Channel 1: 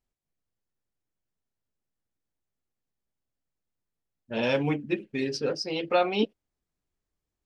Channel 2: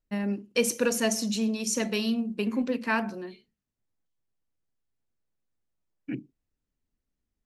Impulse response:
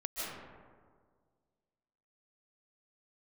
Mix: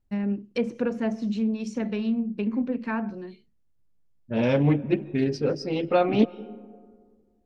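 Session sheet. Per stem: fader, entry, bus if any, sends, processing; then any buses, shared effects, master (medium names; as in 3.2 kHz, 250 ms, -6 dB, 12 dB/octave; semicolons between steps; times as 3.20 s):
0.0 dB, 0.00 s, send -21 dB, treble shelf 2.7 kHz -8 dB
-4.5 dB, 0.00 s, no send, low-pass that closes with the level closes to 1.7 kHz, closed at -23 dBFS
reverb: on, RT60 1.8 s, pre-delay 110 ms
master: bass shelf 270 Hz +11.5 dB; loudspeaker Doppler distortion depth 0.18 ms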